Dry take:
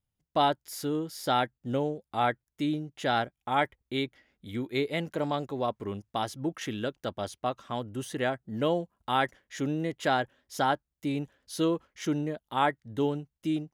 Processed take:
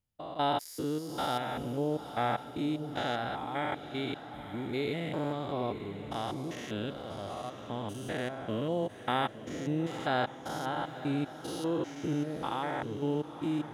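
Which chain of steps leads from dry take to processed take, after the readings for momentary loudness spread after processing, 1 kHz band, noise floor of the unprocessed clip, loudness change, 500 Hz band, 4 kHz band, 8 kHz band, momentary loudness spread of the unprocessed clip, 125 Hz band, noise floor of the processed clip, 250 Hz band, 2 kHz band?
7 LU, -4.5 dB, under -85 dBFS, -3.5 dB, -3.5 dB, -3.5 dB, -5.0 dB, 7 LU, -1.5 dB, -47 dBFS, -2.5 dB, -4.5 dB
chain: spectrogram pixelated in time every 200 ms; echo that smears into a reverb 932 ms, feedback 44%, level -11.5 dB; endings held to a fixed fall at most 550 dB/s

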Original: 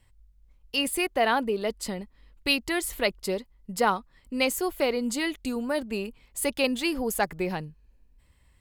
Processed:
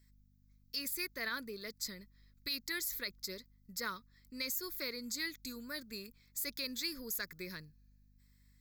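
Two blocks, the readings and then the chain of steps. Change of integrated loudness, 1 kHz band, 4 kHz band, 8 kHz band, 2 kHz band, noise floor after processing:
-12.0 dB, -21.5 dB, -8.5 dB, -8.0 dB, -11.5 dB, -68 dBFS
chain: pre-emphasis filter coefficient 0.9; static phaser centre 2.9 kHz, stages 6; hum 50 Hz, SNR 26 dB; peak limiter -30.5 dBFS, peak gain reduction 8.5 dB; trim +4 dB

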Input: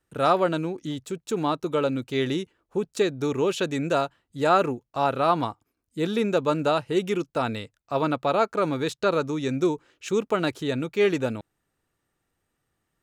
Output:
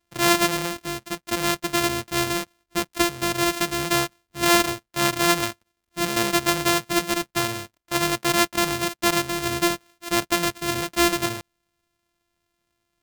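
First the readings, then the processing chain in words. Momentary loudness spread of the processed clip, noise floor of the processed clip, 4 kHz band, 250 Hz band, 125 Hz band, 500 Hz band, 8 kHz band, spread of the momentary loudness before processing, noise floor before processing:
9 LU, -78 dBFS, +10.5 dB, +1.5 dB, -1.0 dB, -3.0 dB, +17.5 dB, 9 LU, -79 dBFS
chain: sorted samples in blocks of 128 samples; tilt shelf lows -4 dB, about 1.2 kHz; trim +2.5 dB

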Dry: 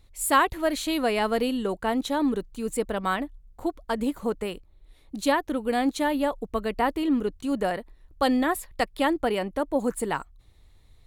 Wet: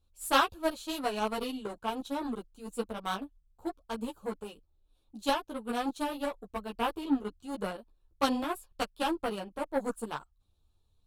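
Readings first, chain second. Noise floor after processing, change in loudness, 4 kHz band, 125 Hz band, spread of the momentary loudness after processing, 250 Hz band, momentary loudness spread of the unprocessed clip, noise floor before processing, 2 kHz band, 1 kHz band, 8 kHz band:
-71 dBFS, -7.5 dB, -3.5 dB, no reading, 11 LU, -8.5 dB, 8 LU, -56 dBFS, -8.0 dB, -6.0 dB, -9.5 dB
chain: Butterworth band-stop 2 kHz, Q 2.3; Chebyshev shaper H 3 -15 dB, 7 -27 dB, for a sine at -7.5 dBFS; three-phase chorus; trim +4.5 dB

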